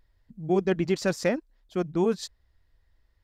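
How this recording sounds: noise floor -70 dBFS; spectral tilt -5.5 dB/octave

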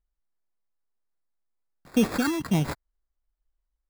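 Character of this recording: phasing stages 4, 1.6 Hz, lowest notch 490–2400 Hz; aliases and images of a low sample rate 3 kHz, jitter 0%

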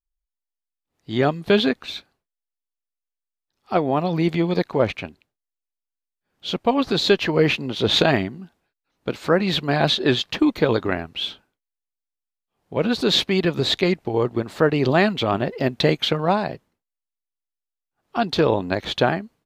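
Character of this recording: noise floor -87 dBFS; spectral tilt -4.0 dB/octave

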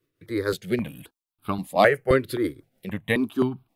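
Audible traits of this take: tremolo triangle 6.2 Hz, depth 60%; notches that jump at a steady rate 3.8 Hz 210–1900 Hz

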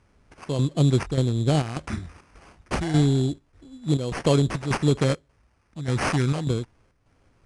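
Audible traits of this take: phasing stages 2, 0.3 Hz, lowest notch 730–2000 Hz; chopped level 1.7 Hz, depth 60%, duty 75%; aliases and images of a low sample rate 3.7 kHz, jitter 0%; IMA ADPCM

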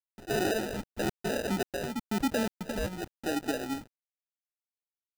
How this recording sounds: a quantiser's noise floor 8-bit, dither none; phasing stages 4, 0.95 Hz, lowest notch 380–1200 Hz; aliases and images of a low sample rate 1.1 kHz, jitter 0%

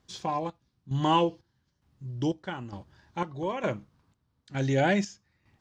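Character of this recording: chopped level 1.1 Hz, depth 65%, duty 55%

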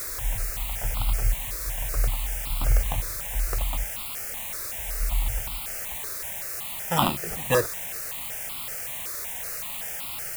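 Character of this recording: aliases and images of a low sample rate 2.2 kHz, jitter 0%; chopped level 1.2 Hz, depth 60%, duty 60%; a quantiser's noise floor 6-bit, dither triangular; notches that jump at a steady rate 5.3 Hz 820–1700 Hz

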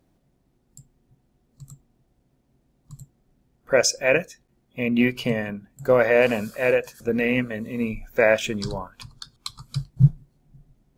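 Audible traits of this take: noise floor -68 dBFS; spectral tilt -5.0 dB/octave

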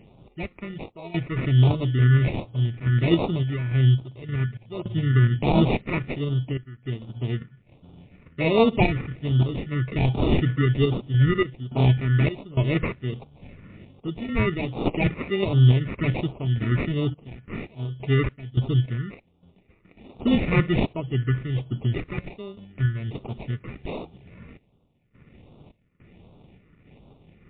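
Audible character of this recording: aliases and images of a low sample rate 1.6 kHz, jitter 0%; phasing stages 4, 1.3 Hz, lowest notch 760–1800 Hz; random-step tremolo, depth 90%; MP3

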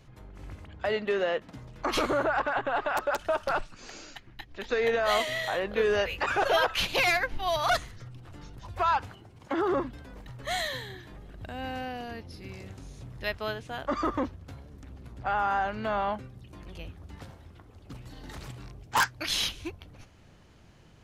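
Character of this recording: noise floor -55 dBFS; spectral tilt -3.5 dB/octave

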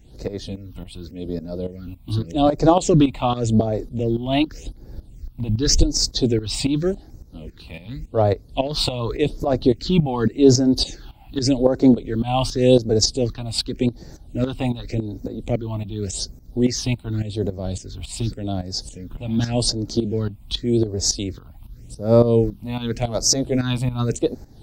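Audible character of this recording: phasing stages 6, 0.87 Hz, lowest notch 420–3000 Hz; tremolo saw up 3.6 Hz, depth 75%

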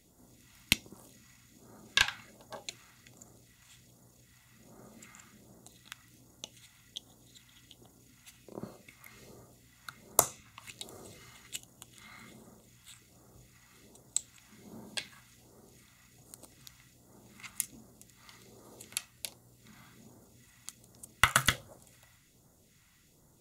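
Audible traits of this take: phasing stages 2, 1.3 Hz, lowest notch 430–2400 Hz

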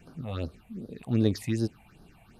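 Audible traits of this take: phasing stages 6, 2.6 Hz, lowest notch 350–2300 Hz

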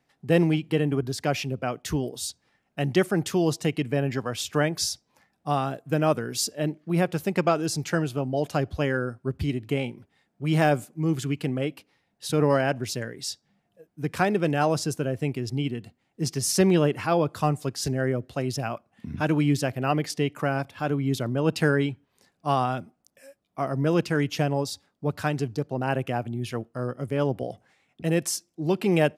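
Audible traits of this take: noise floor -74 dBFS; spectral tilt -5.5 dB/octave

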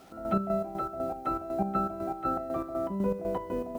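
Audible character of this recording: a quantiser's noise floor 10-bit, dither none; chopped level 4 Hz, depth 60%, duty 50%

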